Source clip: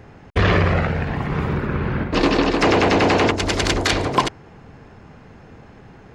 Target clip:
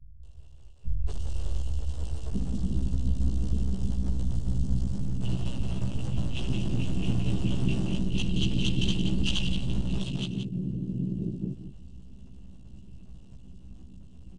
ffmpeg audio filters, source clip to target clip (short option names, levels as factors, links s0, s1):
-filter_complex "[0:a]acrusher=bits=8:mode=log:mix=0:aa=0.000001,afftfilt=real='re*(1-between(b*sr/4096,570,6300))':imag='im*(1-between(b*sr/4096,570,6300))':win_size=4096:overlap=0.75,acompressor=threshold=0.0891:ratio=12,adynamicequalizer=threshold=0.002:dfrequency=5600:dqfactor=1.4:tfrequency=5600:tqfactor=1.4:attack=5:release=100:ratio=0.375:range=3:mode=boostabove:tftype=bell,highpass=f=47:w=0.5412,highpass=f=47:w=1.3066,asplit=2[s0][s1];[s1]aecho=0:1:42|75:0.168|0.398[s2];[s0][s2]amix=inputs=2:normalize=0,aeval=exprs='max(val(0),0)':c=same,aecho=1:1:6.8:0.88,acrossover=split=250|1000[s3][s4][s5];[s5]adelay=100[s6];[s4]adelay=640[s7];[s3][s7][s6]amix=inputs=3:normalize=0,asetrate=18846,aresample=44100"